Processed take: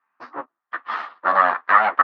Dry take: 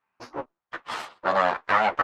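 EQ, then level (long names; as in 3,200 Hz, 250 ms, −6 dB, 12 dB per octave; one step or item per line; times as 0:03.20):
loudspeaker in its box 170–4,500 Hz, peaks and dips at 270 Hz +6 dB, 720 Hz +4 dB, 1,800 Hz +9 dB
parametric band 1,200 Hz +13 dB 0.72 octaves
−4.5 dB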